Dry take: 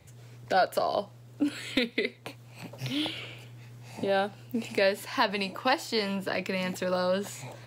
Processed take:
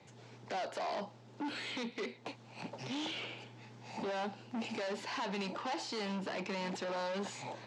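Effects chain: limiter -22 dBFS, peak gain reduction 10 dB; hard clip -36.5 dBFS, distortion -5 dB; speaker cabinet 190–6400 Hz, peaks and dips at 210 Hz +6 dB, 370 Hz +3 dB, 860 Hz +7 dB; gain -1 dB

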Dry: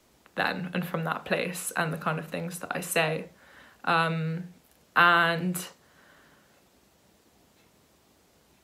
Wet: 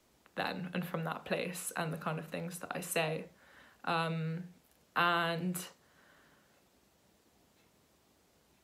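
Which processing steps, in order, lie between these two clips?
dynamic EQ 1600 Hz, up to -6 dB, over -36 dBFS, Q 1.5; gain -6.5 dB

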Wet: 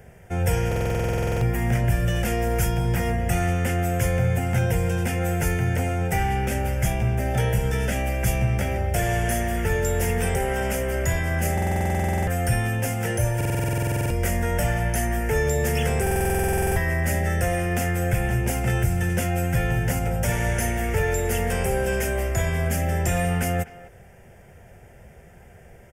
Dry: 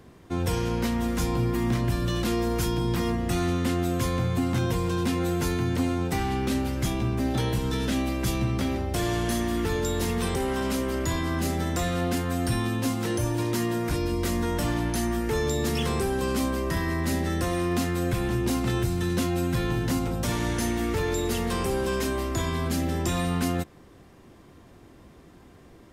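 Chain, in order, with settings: fixed phaser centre 1100 Hz, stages 6; speakerphone echo 0.25 s, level -17 dB; stuck buffer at 0.67/11.53/13.36/16.02, samples 2048, times 15; gain +7 dB

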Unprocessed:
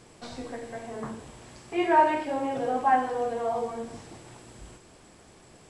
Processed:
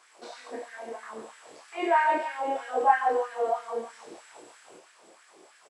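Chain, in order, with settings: doubler 27 ms -2.5 dB; outdoor echo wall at 24 m, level -7 dB; LFO high-pass sine 3.1 Hz 360–1700 Hz; gain -5 dB

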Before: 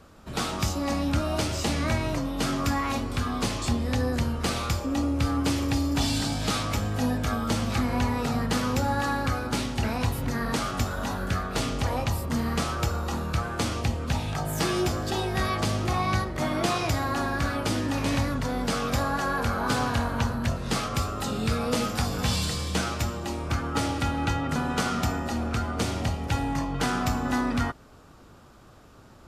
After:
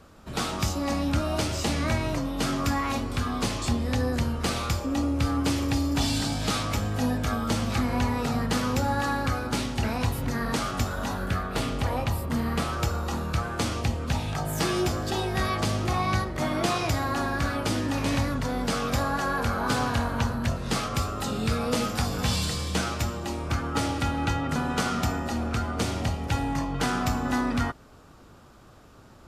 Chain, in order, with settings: 11.26–12.73 bell 6200 Hz -5.5 dB 0.92 oct

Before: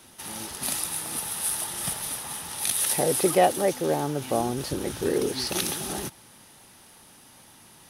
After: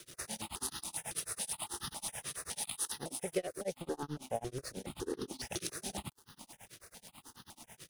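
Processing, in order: LPF 9800 Hz 24 dB/oct; compressor 3:1, threshold -44 dBFS, peak gain reduction 21 dB; crossover distortion -55.5 dBFS; tremolo 9.2 Hz, depth 99%; step phaser 7.2 Hz 230–2300 Hz; gain +10.5 dB

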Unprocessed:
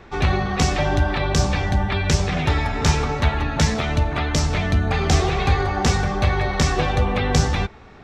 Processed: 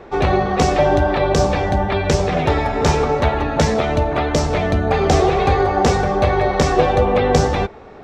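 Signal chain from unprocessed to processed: bell 520 Hz +12.5 dB 1.9 oct; gain -1.5 dB

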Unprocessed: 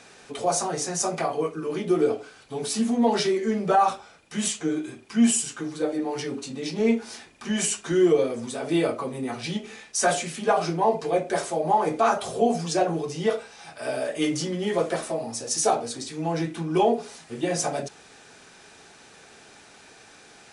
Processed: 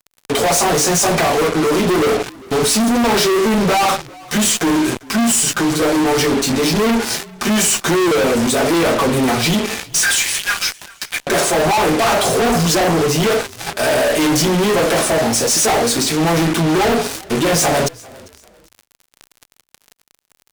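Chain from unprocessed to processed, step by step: 9.96–11.27 Chebyshev high-pass 1600 Hz, order 4; fuzz box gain 43 dB, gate -41 dBFS; on a send: frequency-shifting echo 0.397 s, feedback 31%, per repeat -46 Hz, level -23 dB

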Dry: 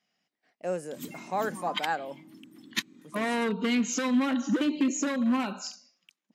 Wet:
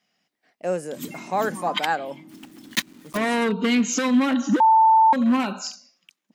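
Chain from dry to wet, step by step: 2.29–3.18 block floating point 3-bit; 4.6–5.13 bleep 888 Hz -17.5 dBFS; gain +6 dB

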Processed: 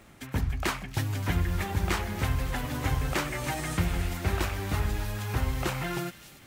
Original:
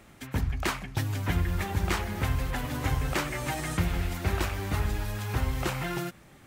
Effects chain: crackle 41/s -44 dBFS; on a send: thin delay 0.286 s, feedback 49%, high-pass 3100 Hz, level -9.5 dB

